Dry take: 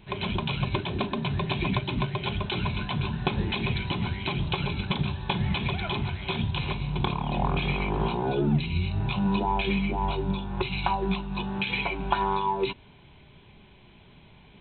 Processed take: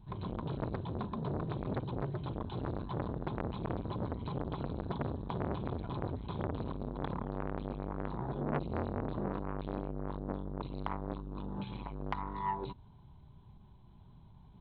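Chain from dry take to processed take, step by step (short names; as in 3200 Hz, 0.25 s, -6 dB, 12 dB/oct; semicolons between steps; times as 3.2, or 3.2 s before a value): EQ curve 120 Hz 0 dB, 510 Hz -15 dB, 970 Hz -5 dB, 2400 Hz -28 dB, 4400 Hz -12 dB; core saturation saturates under 1200 Hz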